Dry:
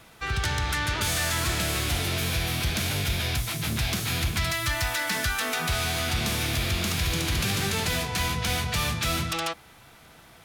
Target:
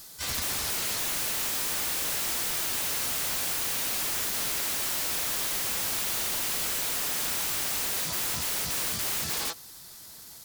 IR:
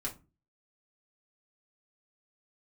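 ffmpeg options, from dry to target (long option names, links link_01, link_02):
-filter_complex "[0:a]asplit=4[link_01][link_02][link_03][link_04];[link_02]asetrate=55563,aresample=44100,atempo=0.793701,volume=-3dB[link_05];[link_03]asetrate=58866,aresample=44100,atempo=0.749154,volume=-1dB[link_06];[link_04]asetrate=88200,aresample=44100,atempo=0.5,volume=-18dB[link_07];[link_01][link_05][link_06][link_07]amix=inputs=4:normalize=0,aexciter=amount=3:drive=9.7:freq=3900,aeval=exprs='(mod(6.31*val(0)+1,2)-1)/6.31':channel_layout=same,volume=-9dB"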